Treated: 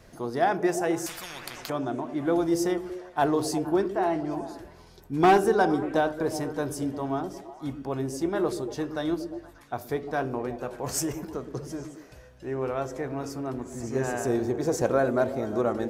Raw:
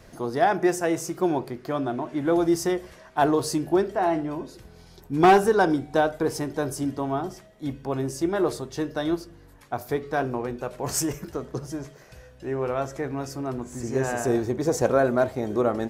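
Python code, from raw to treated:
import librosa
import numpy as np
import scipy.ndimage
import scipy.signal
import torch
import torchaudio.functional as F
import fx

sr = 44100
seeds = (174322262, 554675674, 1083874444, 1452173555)

y = fx.echo_stepped(x, sr, ms=117, hz=260.0, octaves=0.7, feedback_pct=70, wet_db=-6.5)
y = fx.spectral_comp(y, sr, ratio=10.0, at=(1.06, 1.7))
y = y * 10.0 ** (-3.0 / 20.0)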